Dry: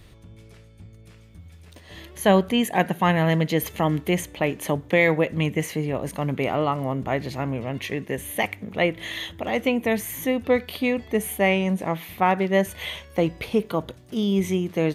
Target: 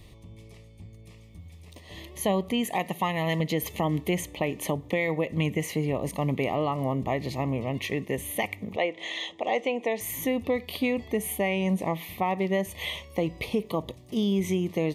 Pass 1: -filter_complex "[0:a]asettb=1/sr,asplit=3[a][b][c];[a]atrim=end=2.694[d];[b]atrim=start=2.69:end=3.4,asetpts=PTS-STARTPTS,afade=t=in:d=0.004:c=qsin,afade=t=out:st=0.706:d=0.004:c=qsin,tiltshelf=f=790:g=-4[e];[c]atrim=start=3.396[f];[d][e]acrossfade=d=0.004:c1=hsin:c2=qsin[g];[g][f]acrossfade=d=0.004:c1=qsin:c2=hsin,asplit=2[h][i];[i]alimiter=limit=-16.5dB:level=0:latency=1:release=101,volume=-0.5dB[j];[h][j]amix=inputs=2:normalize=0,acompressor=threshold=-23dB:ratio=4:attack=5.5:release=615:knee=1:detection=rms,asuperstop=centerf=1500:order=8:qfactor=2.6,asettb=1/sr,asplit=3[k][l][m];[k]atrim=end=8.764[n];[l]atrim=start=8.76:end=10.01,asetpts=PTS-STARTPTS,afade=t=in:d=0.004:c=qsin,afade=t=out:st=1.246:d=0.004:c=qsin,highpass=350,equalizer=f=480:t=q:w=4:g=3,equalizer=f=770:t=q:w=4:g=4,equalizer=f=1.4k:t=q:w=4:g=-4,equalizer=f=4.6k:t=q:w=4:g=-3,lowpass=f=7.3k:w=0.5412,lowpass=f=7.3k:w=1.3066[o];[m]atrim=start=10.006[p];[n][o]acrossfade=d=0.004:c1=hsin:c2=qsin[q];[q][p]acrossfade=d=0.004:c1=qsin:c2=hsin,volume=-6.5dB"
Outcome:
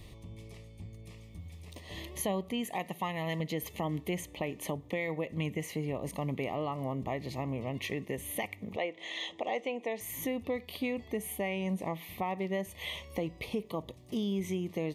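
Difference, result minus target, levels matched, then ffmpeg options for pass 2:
compressor: peak gain reduction +7.5 dB
-filter_complex "[0:a]asettb=1/sr,asplit=3[a][b][c];[a]atrim=end=2.694[d];[b]atrim=start=2.69:end=3.4,asetpts=PTS-STARTPTS,afade=t=in:d=0.004:c=qsin,afade=t=out:st=0.706:d=0.004:c=qsin,tiltshelf=f=790:g=-4[e];[c]atrim=start=3.396[f];[d][e]acrossfade=d=0.004:c1=hsin:c2=qsin[g];[g][f]acrossfade=d=0.004:c1=qsin:c2=hsin,asplit=2[h][i];[i]alimiter=limit=-16.5dB:level=0:latency=1:release=101,volume=-0.5dB[j];[h][j]amix=inputs=2:normalize=0,acompressor=threshold=-13dB:ratio=4:attack=5.5:release=615:knee=1:detection=rms,asuperstop=centerf=1500:order=8:qfactor=2.6,asettb=1/sr,asplit=3[k][l][m];[k]atrim=end=8.764[n];[l]atrim=start=8.76:end=10.01,asetpts=PTS-STARTPTS,afade=t=in:d=0.004:c=qsin,afade=t=out:st=1.246:d=0.004:c=qsin,highpass=350,equalizer=f=480:t=q:w=4:g=3,equalizer=f=770:t=q:w=4:g=4,equalizer=f=1.4k:t=q:w=4:g=-4,equalizer=f=4.6k:t=q:w=4:g=-3,lowpass=f=7.3k:w=0.5412,lowpass=f=7.3k:w=1.3066[o];[m]atrim=start=10.006[p];[n][o]acrossfade=d=0.004:c1=hsin:c2=qsin[q];[q][p]acrossfade=d=0.004:c1=qsin:c2=hsin,volume=-6.5dB"

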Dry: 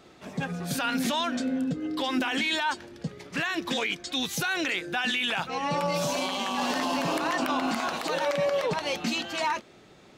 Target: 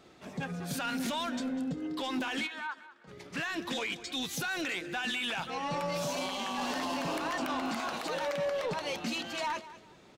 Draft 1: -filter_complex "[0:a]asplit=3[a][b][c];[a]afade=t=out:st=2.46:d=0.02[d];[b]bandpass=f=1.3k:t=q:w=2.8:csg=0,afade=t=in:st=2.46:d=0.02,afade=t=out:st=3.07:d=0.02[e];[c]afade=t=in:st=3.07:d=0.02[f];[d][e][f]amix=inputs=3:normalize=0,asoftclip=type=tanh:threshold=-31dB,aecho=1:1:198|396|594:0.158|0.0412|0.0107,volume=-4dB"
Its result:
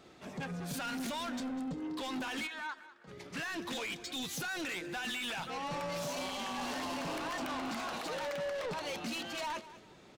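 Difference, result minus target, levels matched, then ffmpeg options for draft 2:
soft clip: distortion +8 dB
-filter_complex "[0:a]asplit=3[a][b][c];[a]afade=t=out:st=2.46:d=0.02[d];[b]bandpass=f=1.3k:t=q:w=2.8:csg=0,afade=t=in:st=2.46:d=0.02,afade=t=out:st=3.07:d=0.02[e];[c]afade=t=in:st=3.07:d=0.02[f];[d][e][f]amix=inputs=3:normalize=0,asoftclip=type=tanh:threshold=-23dB,aecho=1:1:198|396|594:0.158|0.0412|0.0107,volume=-4dB"

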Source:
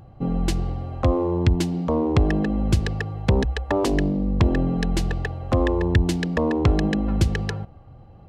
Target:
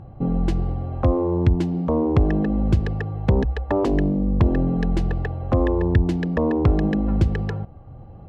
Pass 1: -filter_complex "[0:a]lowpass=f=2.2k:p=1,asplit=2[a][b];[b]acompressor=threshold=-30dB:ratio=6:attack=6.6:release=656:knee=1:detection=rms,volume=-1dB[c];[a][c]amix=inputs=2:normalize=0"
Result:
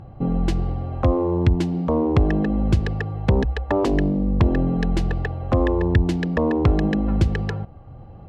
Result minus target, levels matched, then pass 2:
2000 Hz band +3.0 dB
-filter_complex "[0:a]lowpass=f=1.1k:p=1,asplit=2[a][b];[b]acompressor=threshold=-30dB:ratio=6:attack=6.6:release=656:knee=1:detection=rms,volume=-1dB[c];[a][c]amix=inputs=2:normalize=0"

